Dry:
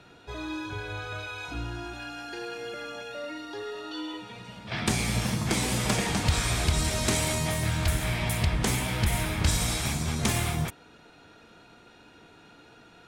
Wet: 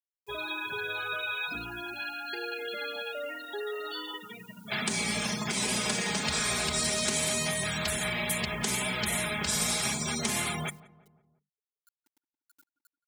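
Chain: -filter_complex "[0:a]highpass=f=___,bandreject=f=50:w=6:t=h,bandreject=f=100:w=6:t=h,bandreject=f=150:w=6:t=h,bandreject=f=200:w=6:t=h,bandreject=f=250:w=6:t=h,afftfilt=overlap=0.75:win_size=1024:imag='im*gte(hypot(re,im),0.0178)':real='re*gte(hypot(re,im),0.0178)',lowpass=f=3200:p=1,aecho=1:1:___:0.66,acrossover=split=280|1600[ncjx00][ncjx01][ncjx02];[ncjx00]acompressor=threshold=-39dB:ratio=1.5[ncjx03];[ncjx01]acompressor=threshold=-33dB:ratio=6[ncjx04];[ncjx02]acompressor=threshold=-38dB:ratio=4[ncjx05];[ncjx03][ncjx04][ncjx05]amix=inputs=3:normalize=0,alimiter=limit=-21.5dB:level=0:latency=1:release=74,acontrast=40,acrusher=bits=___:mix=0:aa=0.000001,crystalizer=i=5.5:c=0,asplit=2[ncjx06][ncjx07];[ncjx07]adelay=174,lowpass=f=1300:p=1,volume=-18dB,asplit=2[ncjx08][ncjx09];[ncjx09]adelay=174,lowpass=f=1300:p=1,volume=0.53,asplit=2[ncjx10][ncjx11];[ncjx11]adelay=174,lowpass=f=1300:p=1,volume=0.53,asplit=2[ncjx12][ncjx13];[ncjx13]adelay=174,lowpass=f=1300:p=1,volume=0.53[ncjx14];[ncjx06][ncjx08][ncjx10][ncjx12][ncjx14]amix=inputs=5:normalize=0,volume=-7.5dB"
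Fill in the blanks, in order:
120, 4.8, 10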